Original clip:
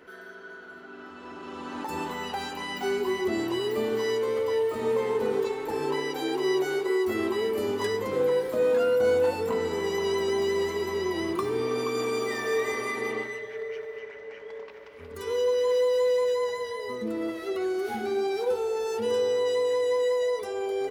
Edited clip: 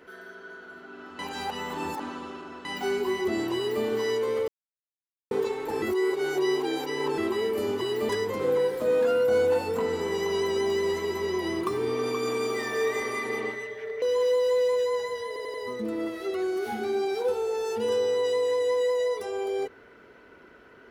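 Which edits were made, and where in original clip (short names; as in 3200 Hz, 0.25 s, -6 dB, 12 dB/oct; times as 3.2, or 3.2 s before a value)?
1.19–2.65 reverse
3.56–3.84 copy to 7.81
4.48–5.31 mute
5.82–7.18 reverse
13.74–15.51 cut
16.76 stutter 0.09 s, 4 plays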